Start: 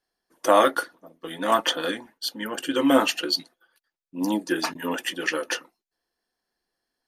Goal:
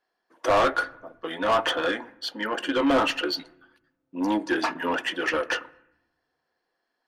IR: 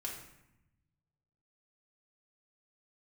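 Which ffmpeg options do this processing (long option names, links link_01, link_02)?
-filter_complex "[0:a]aemphasis=mode=reproduction:type=75kf,asplit=2[link_01][link_02];[link_02]highpass=frequency=720:poles=1,volume=23dB,asoftclip=type=tanh:threshold=-4.5dB[link_03];[link_01][link_03]amix=inputs=2:normalize=0,lowpass=frequency=4400:poles=1,volume=-6dB,asplit=2[link_04][link_05];[1:a]atrim=start_sample=2205,lowpass=2100[link_06];[link_05][link_06]afir=irnorm=-1:irlink=0,volume=-12.5dB[link_07];[link_04][link_07]amix=inputs=2:normalize=0,volume=-9dB"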